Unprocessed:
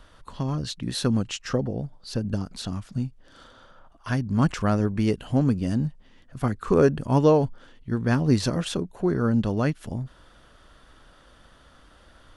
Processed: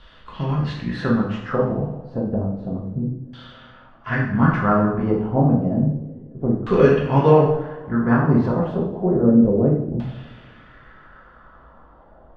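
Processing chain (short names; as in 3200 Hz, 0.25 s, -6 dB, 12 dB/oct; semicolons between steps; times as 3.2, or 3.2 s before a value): harmoniser +3 st -16 dB; two-slope reverb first 0.72 s, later 2.5 s, DRR -4.5 dB; LFO low-pass saw down 0.3 Hz 360–3500 Hz; gain -1.5 dB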